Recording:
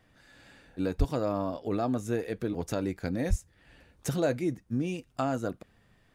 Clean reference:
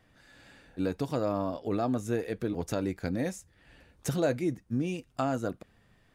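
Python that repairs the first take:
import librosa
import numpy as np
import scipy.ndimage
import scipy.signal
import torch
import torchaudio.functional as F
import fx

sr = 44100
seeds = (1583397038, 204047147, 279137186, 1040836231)

y = fx.highpass(x, sr, hz=140.0, slope=24, at=(0.98, 1.1), fade=0.02)
y = fx.highpass(y, sr, hz=140.0, slope=24, at=(3.29, 3.41), fade=0.02)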